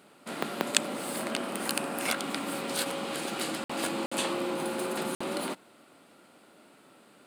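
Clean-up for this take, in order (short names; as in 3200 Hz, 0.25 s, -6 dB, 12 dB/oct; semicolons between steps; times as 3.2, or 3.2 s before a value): interpolate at 3.64/4.06/5.15, 55 ms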